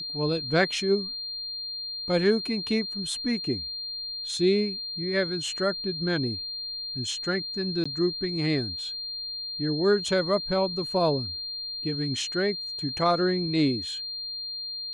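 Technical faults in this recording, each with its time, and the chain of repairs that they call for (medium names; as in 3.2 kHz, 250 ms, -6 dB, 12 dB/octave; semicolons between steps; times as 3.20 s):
whine 4.2 kHz -32 dBFS
7.84–7.86 s: dropout 15 ms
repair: band-stop 4.2 kHz, Q 30; interpolate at 7.84 s, 15 ms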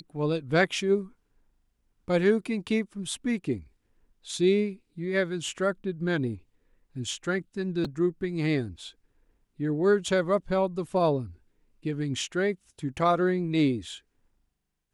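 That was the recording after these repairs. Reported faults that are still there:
nothing left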